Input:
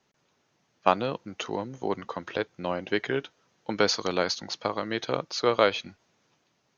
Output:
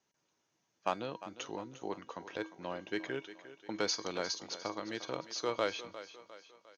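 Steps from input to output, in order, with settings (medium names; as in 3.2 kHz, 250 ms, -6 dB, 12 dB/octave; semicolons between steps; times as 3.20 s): bass shelf 150 Hz -4 dB; in parallel at -7 dB: hard clipper -17.5 dBFS, distortion -9 dB; on the sum: peaking EQ 6.2 kHz +6.5 dB 0.5 oct; on a send: thinning echo 353 ms, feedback 50%, high-pass 210 Hz, level -13.5 dB; on the sum: resampled via 22.05 kHz; feedback comb 320 Hz, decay 0.32 s, harmonics odd, mix 70%; trim -3.5 dB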